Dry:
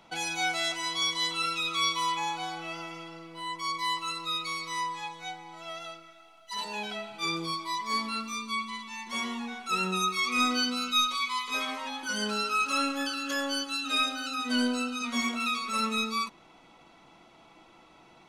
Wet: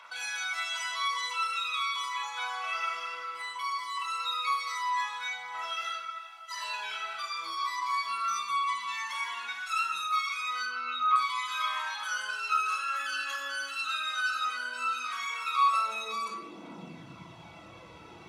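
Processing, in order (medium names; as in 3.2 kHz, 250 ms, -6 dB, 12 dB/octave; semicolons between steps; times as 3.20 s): 9.45–9.99 s: peaking EQ 580 Hz -13 dB 2.2 oct; 10.66–11.16 s: low-pass 1.9 kHz 12 dB/octave; peak limiter -33.5 dBFS, peak gain reduction 19 dB; high-pass sweep 1.3 kHz -> 91 Hz, 15.45–17.23 s; phaser 0.18 Hz, delay 4.6 ms, feedback 47%; simulated room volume 2300 m³, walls furnished, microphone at 5.3 m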